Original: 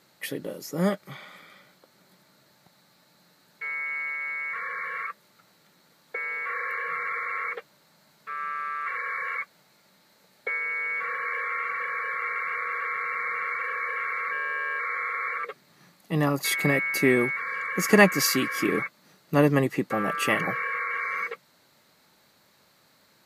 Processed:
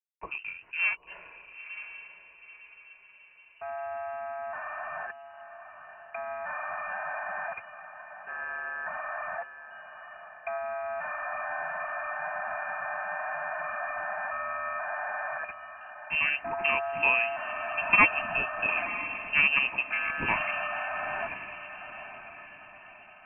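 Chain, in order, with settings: backlash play -43 dBFS; diffused feedback echo 0.959 s, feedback 42%, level -11 dB; inverted band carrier 2900 Hz; gain -4 dB

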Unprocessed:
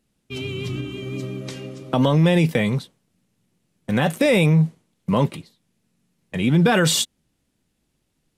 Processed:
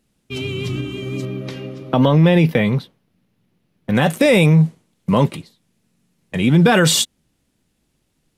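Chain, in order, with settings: 1.25–3.95 bell 8000 Hz -14 dB 1 oct; gain +4 dB

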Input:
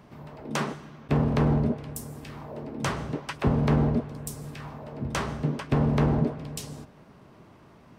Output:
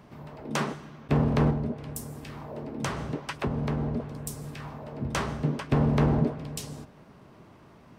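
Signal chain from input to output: 1.5–4 compressor 6:1, threshold -26 dBFS, peak gain reduction 8.5 dB

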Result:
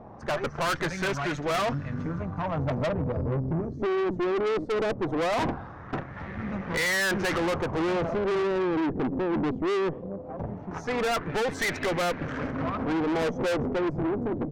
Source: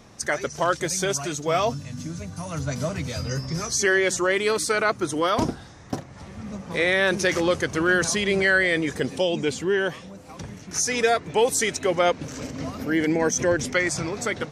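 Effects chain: LFO low-pass sine 0.19 Hz 310–1900 Hz; tube stage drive 30 dB, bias 0.6; attack slew limiter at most 490 dB/s; gain +5.5 dB

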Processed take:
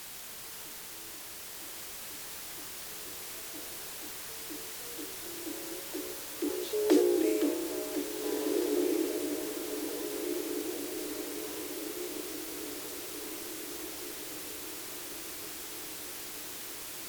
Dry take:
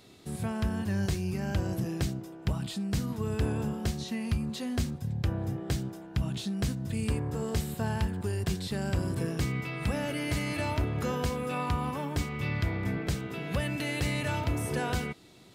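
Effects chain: Doppler pass-by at 6.42, 18 m/s, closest 2.2 m; frequency shift +260 Hz; dynamic EQ 370 Hz, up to +5 dB, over -55 dBFS, Q 0.77; requantised 8-bit, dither triangular; varispeed -9%; on a send: diffused feedback echo 1.72 s, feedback 55%, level -3.5 dB; on the sum: gain +4 dB

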